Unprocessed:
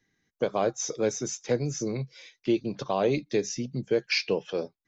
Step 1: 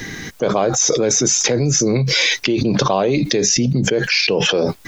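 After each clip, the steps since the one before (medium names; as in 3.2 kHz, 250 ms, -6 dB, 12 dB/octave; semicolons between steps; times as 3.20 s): level flattener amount 100%; trim +4.5 dB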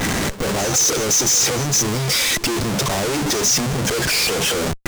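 Schmitt trigger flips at -30.5 dBFS; pre-echo 158 ms -14.5 dB; dynamic bell 6.9 kHz, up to +7 dB, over -33 dBFS, Q 0.88; trim -4 dB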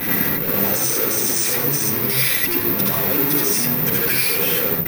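reverberation RT60 0.50 s, pre-delay 69 ms, DRR -2.5 dB; careless resampling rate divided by 3×, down filtered, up zero stuff; trim -12 dB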